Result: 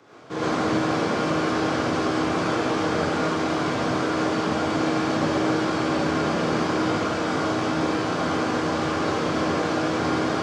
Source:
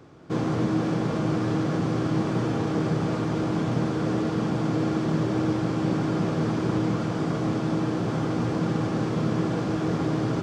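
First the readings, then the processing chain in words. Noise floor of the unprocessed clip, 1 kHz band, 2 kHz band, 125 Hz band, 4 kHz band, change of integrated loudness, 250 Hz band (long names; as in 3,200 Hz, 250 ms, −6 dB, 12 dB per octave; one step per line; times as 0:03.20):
−28 dBFS, +8.0 dB, +9.5 dB, −5.5 dB, +9.0 dB, +2.0 dB, +0.5 dB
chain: sub-octave generator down 1 octave, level −1 dB
meter weighting curve A
reverb whose tail is shaped and stops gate 150 ms rising, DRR −7.5 dB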